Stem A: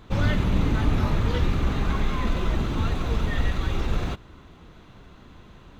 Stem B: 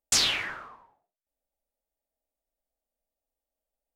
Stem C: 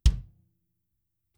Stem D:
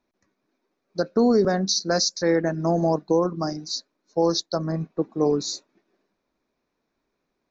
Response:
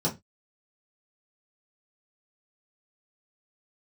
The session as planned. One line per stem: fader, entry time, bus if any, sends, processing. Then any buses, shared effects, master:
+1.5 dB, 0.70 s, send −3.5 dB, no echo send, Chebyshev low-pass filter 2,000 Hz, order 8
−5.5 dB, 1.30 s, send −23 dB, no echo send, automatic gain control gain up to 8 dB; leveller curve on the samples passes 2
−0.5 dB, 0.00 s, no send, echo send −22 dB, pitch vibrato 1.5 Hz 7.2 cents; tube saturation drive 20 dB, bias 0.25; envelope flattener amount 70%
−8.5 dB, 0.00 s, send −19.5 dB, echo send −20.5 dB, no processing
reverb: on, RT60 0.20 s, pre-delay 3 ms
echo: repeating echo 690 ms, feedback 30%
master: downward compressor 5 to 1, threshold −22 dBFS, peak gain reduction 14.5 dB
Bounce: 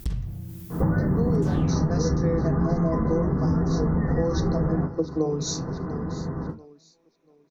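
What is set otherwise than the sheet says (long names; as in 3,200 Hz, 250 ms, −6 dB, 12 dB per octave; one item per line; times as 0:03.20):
stem B −5.5 dB → −15.0 dB
stem D −8.5 dB → +3.0 dB
reverb return +6.5 dB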